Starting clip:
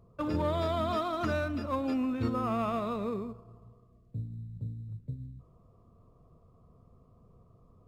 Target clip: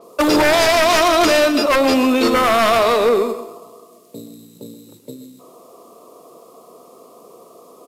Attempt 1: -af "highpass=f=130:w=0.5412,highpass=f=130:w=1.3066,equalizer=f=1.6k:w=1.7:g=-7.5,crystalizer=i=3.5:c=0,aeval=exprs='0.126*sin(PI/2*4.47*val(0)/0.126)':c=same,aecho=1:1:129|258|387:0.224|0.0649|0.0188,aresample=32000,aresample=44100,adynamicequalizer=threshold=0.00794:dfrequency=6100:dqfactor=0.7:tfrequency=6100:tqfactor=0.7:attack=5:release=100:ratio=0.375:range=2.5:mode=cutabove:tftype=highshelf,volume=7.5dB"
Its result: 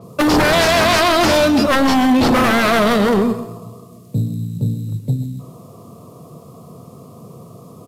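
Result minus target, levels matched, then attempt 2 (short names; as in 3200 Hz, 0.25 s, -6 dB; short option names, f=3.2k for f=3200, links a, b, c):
125 Hz band +17.0 dB
-af "highpass=f=330:w=0.5412,highpass=f=330:w=1.3066,equalizer=f=1.6k:w=1.7:g=-7.5,crystalizer=i=3.5:c=0,aeval=exprs='0.126*sin(PI/2*4.47*val(0)/0.126)':c=same,aecho=1:1:129|258|387:0.224|0.0649|0.0188,aresample=32000,aresample=44100,adynamicequalizer=threshold=0.00794:dfrequency=6100:dqfactor=0.7:tfrequency=6100:tqfactor=0.7:attack=5:release=100:ratio=0.375:range=2.5:mode=cutabove:tftype=highshelf,volume=7.5dB"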